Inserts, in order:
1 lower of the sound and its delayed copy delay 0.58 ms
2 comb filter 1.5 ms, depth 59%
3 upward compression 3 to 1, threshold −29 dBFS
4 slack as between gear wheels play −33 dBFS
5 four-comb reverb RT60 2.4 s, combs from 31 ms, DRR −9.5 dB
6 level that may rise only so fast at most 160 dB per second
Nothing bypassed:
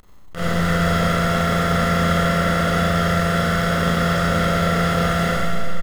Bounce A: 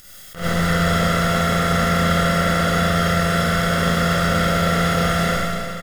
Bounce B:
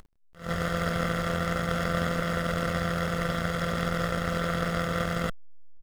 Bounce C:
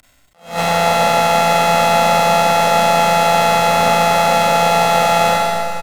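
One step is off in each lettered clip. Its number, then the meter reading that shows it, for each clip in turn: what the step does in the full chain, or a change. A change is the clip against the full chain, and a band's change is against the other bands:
4, distortion level −12 dB
5, change in momentary loudness spread −2 LU
1, 125 Hz band −13.0 dB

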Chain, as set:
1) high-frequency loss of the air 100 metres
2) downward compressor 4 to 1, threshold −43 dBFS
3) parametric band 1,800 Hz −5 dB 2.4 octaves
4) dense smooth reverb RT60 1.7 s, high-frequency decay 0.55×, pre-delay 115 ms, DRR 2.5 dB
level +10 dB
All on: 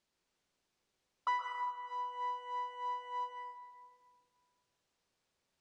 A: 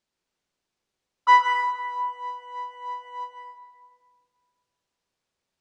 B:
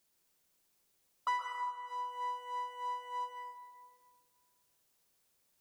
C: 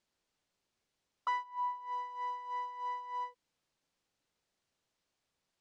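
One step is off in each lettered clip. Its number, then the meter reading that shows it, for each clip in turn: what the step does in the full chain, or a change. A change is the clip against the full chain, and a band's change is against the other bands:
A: 2, average gain reduction 6.5 dB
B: 1, 4 kHz band +1.5 dB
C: 4, change in momentary loudness spread −9 LU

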